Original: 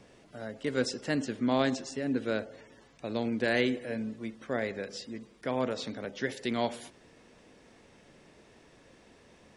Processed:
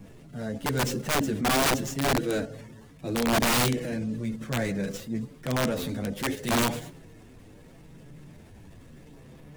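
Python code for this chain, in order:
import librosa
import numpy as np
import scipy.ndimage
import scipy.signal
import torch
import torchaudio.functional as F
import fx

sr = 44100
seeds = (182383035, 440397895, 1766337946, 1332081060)

p1 = scipy.signal.medfilt(x, 9)
p2 = fx.bass_treble(p1, sr, bass_db=15, treble_db=10)
p3 = fx.chorus_voices(p2, sr, voices=4, hz=0.39, base_ms=10, depth_ms=3.9, mix_pct=50)
p4 = fx.level_steps(p3, sr, step_db=23)
p5 = p3 + (p4 * librosa.db_to_amplitude(-0.5))
p6 = (np.mod(10.0 ** (21.0 / 20.0) * p5 + 1.0, 2.0) - 1.0) / 10.0 ** (21.0 / 20.0)
p7 = fx.transient(p6, sr, attack_db=-5, sustain_db=3)
y = p7 * librosa.db_to_amplitude(3.5)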